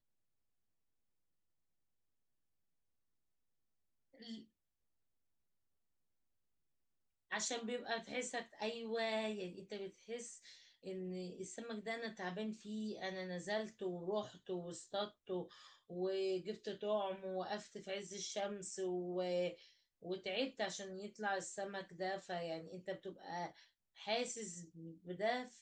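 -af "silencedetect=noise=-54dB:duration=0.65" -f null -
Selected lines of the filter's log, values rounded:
silence_start: 0.00
silence_end: 4.20 | silence_duration: 4.20
silence_start: 4.43
silence_end: 7.31 | silence_duration: 2.88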